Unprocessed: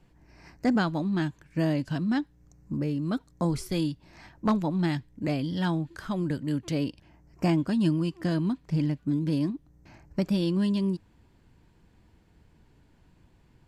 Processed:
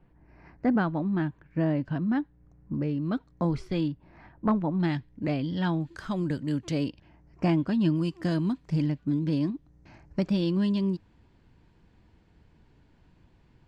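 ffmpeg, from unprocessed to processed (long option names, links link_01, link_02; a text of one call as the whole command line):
ffmpeg -i in.wav -af "asetnsamples=nb_out_samples=441:pad=0,asendcmd='2.74 lowpass f 3100;3.88 lowpass f 1700;4.8 lowpass f 3800;5.81 lowpass f 8300;6.89 lowpass f 4000;7.96 lowpass f 9400;8.83 lowpass f 5400',lowpass=1900" out.wav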